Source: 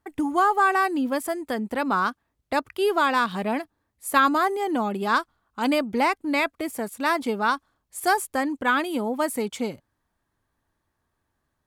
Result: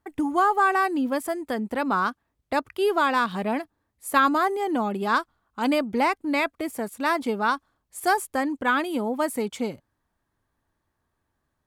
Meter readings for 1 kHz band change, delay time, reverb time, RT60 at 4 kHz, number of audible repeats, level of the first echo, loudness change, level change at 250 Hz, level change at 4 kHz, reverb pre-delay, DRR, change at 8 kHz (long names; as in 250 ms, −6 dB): −0.5 dB, no echo audible, no reverb audible, no reverb audible, no echo audible, no echo audible, −0.5 dB, 0.0 dB, −2.0 dB, no reverb audible, no reverb audible, −2.5 dB